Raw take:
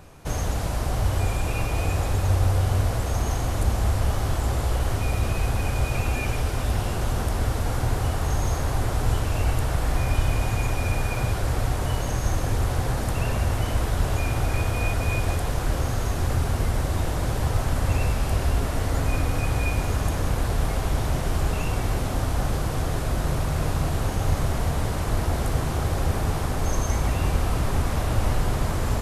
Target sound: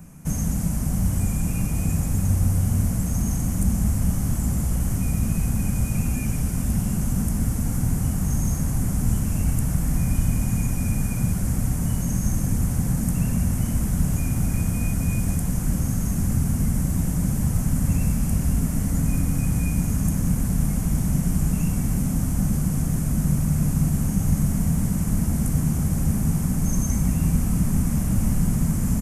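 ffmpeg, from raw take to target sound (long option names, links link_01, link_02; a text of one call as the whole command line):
ffmpeg -i in.wav -filter_complex "[0:a]firequalizer=gain_entry='entry(110,0);entry(180,15);entry(370,-8);entry(2200,-4);entry(3800,-14);entry(6200,3);entry(8900,7)':delay=0.05:min_phase=1,acrossover=split=430|3000[link_01][link_02][link_03];[link_02]acompressor=threshold=-49dB:ratio=1.5[link_04];[link_01][link_04][link_03]amix=inputs=3:normalize=0" out.wav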